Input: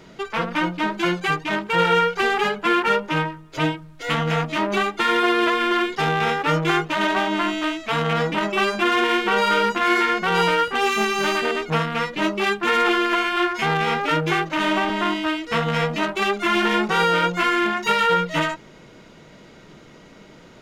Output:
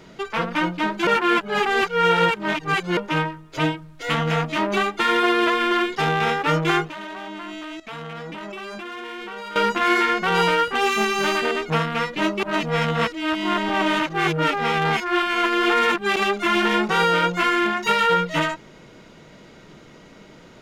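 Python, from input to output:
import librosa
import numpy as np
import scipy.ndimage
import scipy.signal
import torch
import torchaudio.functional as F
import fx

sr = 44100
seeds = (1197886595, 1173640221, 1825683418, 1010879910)

y = fx.level_steps(x, sr, step_db=17, at=(6.89, 9.56))
y = fx.edit(y, sr, fx.reverse_span(start_s=1.07, length_s=1.9),
    fx.reverse_span(start_s=12.43, length_s=3.73), tone=tone)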